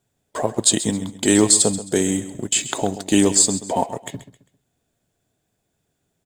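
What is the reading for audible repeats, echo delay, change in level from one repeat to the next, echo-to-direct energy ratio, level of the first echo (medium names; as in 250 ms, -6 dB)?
3, 133 ms, -10.0 dB, -13.5 dB, -14.0 dB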